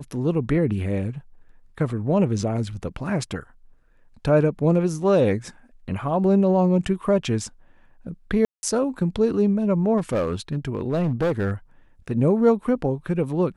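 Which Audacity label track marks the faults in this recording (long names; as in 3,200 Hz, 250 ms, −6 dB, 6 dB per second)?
8.450000	8.630000	drop-out 180 ms
9.970000	11.520000	clipping −18 dBFS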